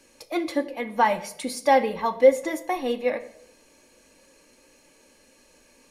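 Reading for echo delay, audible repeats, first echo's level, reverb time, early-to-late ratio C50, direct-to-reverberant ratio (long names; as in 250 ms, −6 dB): no echo audible, no echo audible, no echo audible, 0.75 s, 15.0 dB, 8.0 dB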